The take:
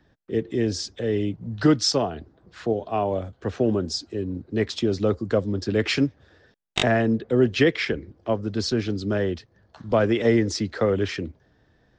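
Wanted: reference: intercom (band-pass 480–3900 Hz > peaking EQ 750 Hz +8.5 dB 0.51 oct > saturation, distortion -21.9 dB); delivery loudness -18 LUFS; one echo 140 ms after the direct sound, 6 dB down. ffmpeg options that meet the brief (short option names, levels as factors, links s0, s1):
-af "highpass=480,lowpass=3900,equalizer=f=750:t=o:w=0.51:g=8.5,aecho=1:1:140:0.501,asoftclip=threshold=0.299,volume=2.82"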